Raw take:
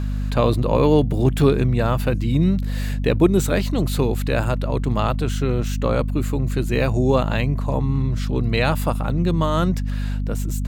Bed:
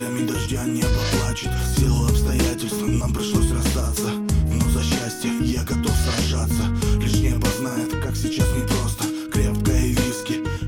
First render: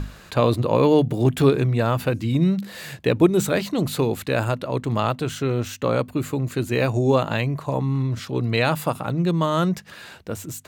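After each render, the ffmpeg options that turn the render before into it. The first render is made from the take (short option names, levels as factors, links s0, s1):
-af "bandreject=f=50:t=h:w=6,bandreject=f=100:t=h:w=6,bandreject=f=150:t=h:w=6,bandreject=f=200:t=h:w=6,bandreject=f=250:t=h:w=6"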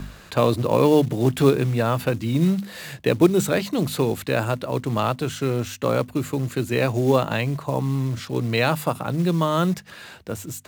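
-filter_complex "[0:a]acrossover=split=110|1200[s0][s1][s2];[s0]asoftclip=type=hard:threshold=0.0168[s3];[s3][s1][s2]amix=inputs=3:normalize=0,acrusher=bits=6:mode=log:mix=0:aa=0.000001"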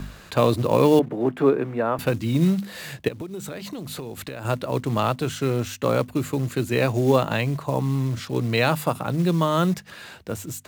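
-filter_complex "[0:a]asettb=1/sr,asplit=3[s0][s1][s2];[s0]atrim=end=0.994[s3];[s1]atrim=start=0.99:end=1.99,asetpts=PTS-STARTPTS,afade=t=in:d=0.004:c=qsin,afade=t=out:st=0.996:d=0.004:c=qsin,acrossover=split=200 2100:gain=0.126 1 0.0891[s4][s5][s6];[s4][s5][s6]amix=inputs=3:normalize=0[s7];[s2]atrim=start=1.986[s8];[s3][s7]acrossfade=d=0.004:c1=hsin:c2=qsin[s9];[s9][s8]acrossfade=d=0.004:c1=qsin:c2=hsin,asettb=1/sr,asplit=3[s10][s11][s12];[s10]atrim=end=3.084[s13];[s11]atrim=start=3.08:end=4.45,asetpts=PTS-STARTPTS,afade=t=in:d=0.004:c=qsin,afade=t=out:st=1.366:d=0.004:c=qsin,acompressor=threshold=0.0355:ratio=16:attack=3.2:release=140:knee=1:detection=peak[s14];[s12]atrim=start=4.446[s15];[s13][s14]acrossfade=d=0.004:c1=hsin:c2=qsin[s16];[s16][s15]acrossfade=d=0.004:c1=qsin:c2=hsin"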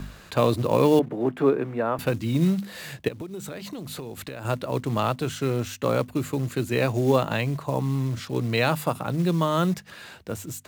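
-af "volume=0.794"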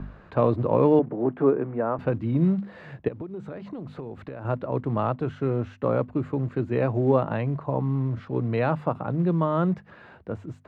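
-af "lowpass=1300"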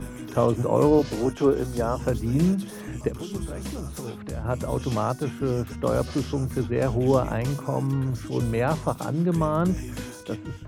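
-filter_complex "[1:a]volume=0.188[s0];[0:a][s0]amix=inputs=2:normalize=0"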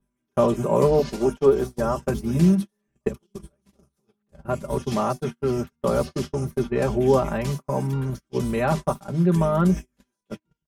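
-af "agate=range=0.00794:threshold=0.0447:ratio=16:detection=peak,aecho=1:1:5.1:0.82"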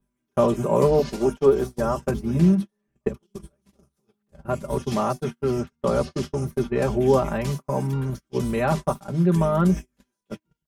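-filter_complex "[0:a]asettb=1/sr,asplit=3[s0][s1][s2];[s0]atrim=end=2.114[s3];[s1]atrim=start=2.11:end=3.23,asetpts=PTS-STARTPTS,afade=t=in:d=0.004:c=qsin,afade=t=out:st=1.116:d=0.004:c=qsin,highshelf=f=4100:g=-8[s4];[s2]atrim=start=3.226[s5];[s3][s4]acrossfade=d=0.004:c1=hsin:c2=qsin[s6];[s6][s5]acrossfade=d=0.004:c1=qsin:c2=hsin,asettb=1/sr,asplit=3[s7][s8][s9];[s7]atrim=end=5.594[s10];[s8]atrim=start=5.59:end=6.23,asetpts=PTS-STARTPTS,afade=t=in:d=0.004:c=qsin,afade=t=out:st=0.636:d=0.004:c=qsin,lowpass=8800[s11];[s9]atrim=start=6.226[s12];[s10][s11]acrossfade=d=0.004:c1=hsin:c2=qsin[s13];[s13][s12]acrossfade=d=0.004:c1=qsin:c2=hsin"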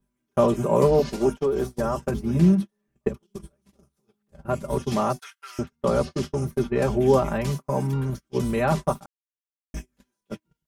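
-filter_complex "[0:a]asettb=1/sr,asplit=3[s0][s1][s2];[s0]atrim=end=1.314[s3];[s1]atrim=start=1.31:end=2.18,asetpts=PTS-STARTPTS,afade=t=in:d=0.004:c=qsin,afade=t=out:st=0.866:d=0.004:c=qsin,acompressor=threshold=0.112:ratio=6:attack=3.2:release=140:knee=1:detection=peak[s4];[s2]atrim=start=2.176[s5];[s3][s4]acrossfade=d=0.004:c1=hsin:c2=qsin[s6];[s6][s5]acrossfade=d=0.004:c1=qsin:c2=hsin,asettb=1/sr,asplit=3[s7][s8][s9];[s7]atrim=end=5.194[s10];[s8]atrim=start=5.19:end=5.59,asetpts=PTS-STARTPTS,afade=t=in:d=0.004:c=qsin,afade=t=out:st=0.396:d=0.004:c=qsin,highpass=f=1300:w=0.5412,highpass=f=1300:w=1.3066[s11];[s9]atrim=start=5.586[s12];[s10][s11]acrossfade=d=0.004:c1=hsin:c2=qsin[s13];[s13][s12]acrossfade=d=0.004:c1=qsin:c2=hsin,asplit=3[s14][s15][s16];[s14]atrim=end=9.06,asetpts=PTS-STARTPTS,afade=t=out:st=9.056:d=0.004:c=hsin[s17];[s15]atrim=start=9.06:end=9.74,asetpts=PTS-STARTPTS,volume=0[s18];[s16]atrim=start=9.74,asetpts=PTS-STARTPTS,afade=t=in:d=0.004:c=hsin[s19];[s17][s18][s19]concat=n=3:v=0:a=1"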